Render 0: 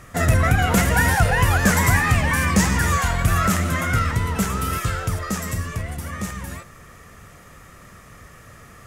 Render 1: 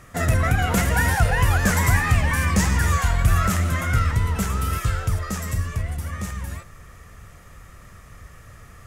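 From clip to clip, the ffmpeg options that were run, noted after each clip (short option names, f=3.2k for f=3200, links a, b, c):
-af "asubboost=boost=2.5:cutoff=120,volume=-3dB"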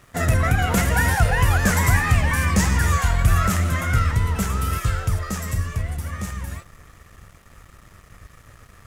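-af "aeval=exprs='sgn(val(0))*max(abs(val(0))-0.00335,0)':c=same,volume=1dB"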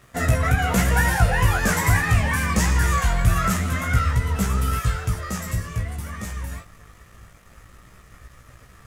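-af "flanger=delay=15.5:depth=2.9:speed=0.23,volume=2.5dB"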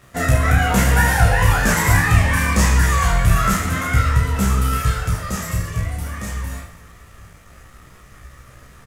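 -af "aecho=1:1:30|72|130.8|213.1|328.4:0.631|0.398|0.251|0.158|0.1,volume=2dB"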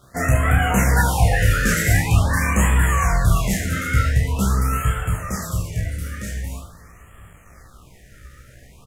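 -af "afftfilt=real='re*(1-between(b*sr/1024,840*pow(5000/840,0.5+0.5*sin(2*PI*0.45*pts/sr))/1.41,840*pow(5000/840,0.5+0.5*sin(2*PI*0.45*pts/sr))*1.41))':imag='im*(1-between(b*sr/1024,840*pow(5000/840,0.5+0.5*sin(2*PI*0.45*pts/sr))/1.41,840*pow(5000/840,0.5+0.5*sin(2*PI*0.45*pts/sr))*1.41))':win_size=1024:overlap=0.75,volume=-1.5dB"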